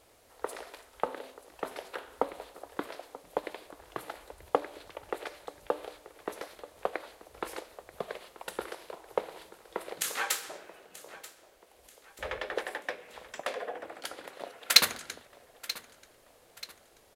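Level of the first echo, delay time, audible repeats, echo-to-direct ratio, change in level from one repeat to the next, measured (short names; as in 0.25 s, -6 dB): -17.0 dB, 0.934 s, 3, -16.0 dB, -7.5 dB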